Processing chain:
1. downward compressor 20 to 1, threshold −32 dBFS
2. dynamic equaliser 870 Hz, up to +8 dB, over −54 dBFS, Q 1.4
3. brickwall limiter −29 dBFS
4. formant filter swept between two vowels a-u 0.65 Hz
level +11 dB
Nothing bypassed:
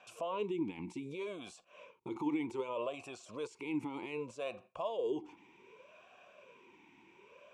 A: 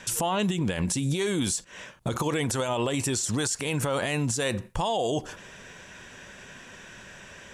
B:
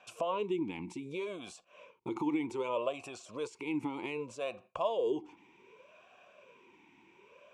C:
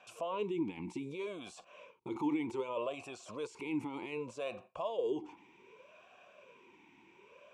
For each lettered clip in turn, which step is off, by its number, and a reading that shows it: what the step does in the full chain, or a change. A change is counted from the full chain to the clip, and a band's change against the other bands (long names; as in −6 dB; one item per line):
4, 8 kHz band +16.0 dB
3, average gain reduction 1.5 dB
1, average gain reduction 5.5 dB